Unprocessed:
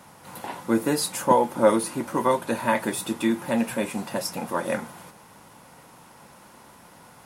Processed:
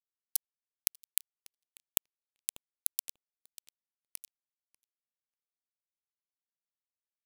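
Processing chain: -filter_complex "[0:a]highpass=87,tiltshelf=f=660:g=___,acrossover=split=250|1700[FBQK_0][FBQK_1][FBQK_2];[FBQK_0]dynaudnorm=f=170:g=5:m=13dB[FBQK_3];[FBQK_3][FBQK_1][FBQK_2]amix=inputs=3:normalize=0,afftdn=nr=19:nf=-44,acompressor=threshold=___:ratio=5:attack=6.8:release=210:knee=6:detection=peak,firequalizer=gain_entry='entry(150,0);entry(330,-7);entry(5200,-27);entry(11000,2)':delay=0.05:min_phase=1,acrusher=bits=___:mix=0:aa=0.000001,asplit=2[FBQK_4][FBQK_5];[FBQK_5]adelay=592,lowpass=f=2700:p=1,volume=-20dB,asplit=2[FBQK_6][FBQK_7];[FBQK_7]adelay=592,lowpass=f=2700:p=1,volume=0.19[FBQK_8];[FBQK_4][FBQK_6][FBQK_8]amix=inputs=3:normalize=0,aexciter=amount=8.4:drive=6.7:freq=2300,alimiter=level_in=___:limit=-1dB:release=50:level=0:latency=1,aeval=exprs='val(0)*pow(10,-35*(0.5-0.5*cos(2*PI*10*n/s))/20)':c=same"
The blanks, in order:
-6, -34dB, 4, 8.5dB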